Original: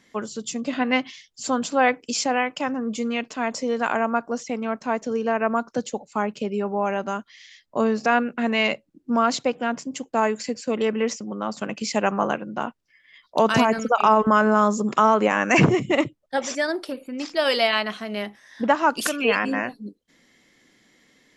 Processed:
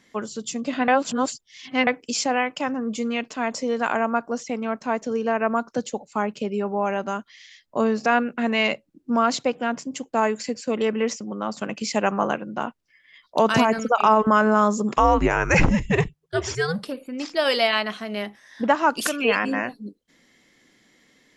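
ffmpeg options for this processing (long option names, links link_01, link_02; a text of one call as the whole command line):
ffmpeg -i in.wav -filter_complex "[0:a]asettb=1/sr,asplit=3[link_01][link_02][link_03];[link_01]atrim=end=14.964[link_04];[link_02]atrim=start=14.96:end=16.88,asetpts=PTS-STARTPTS,afade=type=in:duration=0.004:curve=qsin,afade=type=out:start_time=1.916:duration=0.004:curve=qsin,afreqshift=-160[link_05];[link_03]atrim=start=16.876[link_06];[link_04][link_05]acrossfade=duration=0.004:curve1=hsin:curve2=qsin[link_07];[link_07][link_06]acrossfade=duration=0.004:curve1=qsin:curve2=hsin,asplit=3[link_08][link_09][link_10];[link_08]atrim=end=0.882[link_11];[link_09]atrim=start=0.878:end=1.872,asetpts=PTS-STARTPTS,areverse[link_12];[link_10]atrim=start=1.868[link_13];[link_11][link_12]acrossfade=duration=0.004:curve1=hsin:curve2=hsin[link_14];[link_14][link_13]acrossfade=duration=0.004:curve1=hsin:curve2=hsin" out.wav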